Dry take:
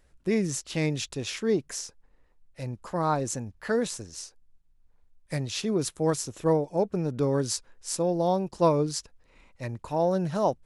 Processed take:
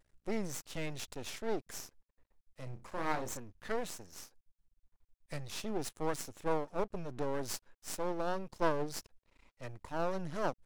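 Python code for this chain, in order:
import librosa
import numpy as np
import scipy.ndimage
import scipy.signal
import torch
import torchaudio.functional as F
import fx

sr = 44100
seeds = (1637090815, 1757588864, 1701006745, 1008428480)

y = fx.room_flutter(x, sr, wall_m=5.5, rt60_s=0.22, at=(2.63, 3.37))
y = np.maximum(y, 0.0)
y = fx.vibrato(y, sr, rate_hz=0.32, depth_cents=13.0)
y = y * librosa.db_to_amplitude(-5.5)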